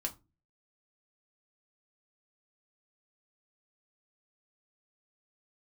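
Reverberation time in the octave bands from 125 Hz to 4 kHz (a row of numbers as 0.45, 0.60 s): 0.55, 0.45, 0.30, 0.25, 0.20, 0.20 s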